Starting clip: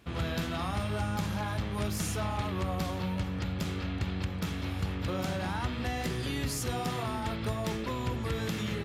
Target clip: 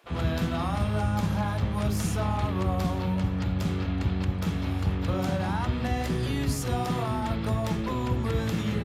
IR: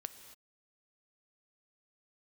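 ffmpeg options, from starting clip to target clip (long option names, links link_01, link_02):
-filter_complex "[0:a]acrossover=split=1100[link_01][link_02];[link_01]acontrast=63[link_03];[link_03][link_02]amix=inputs=2:normalize=0,acrossover=split=430[link_04][link_05];[link_04]adelay=40[link_06];[link_06][link_05]amix=inputs=2:normalize=0"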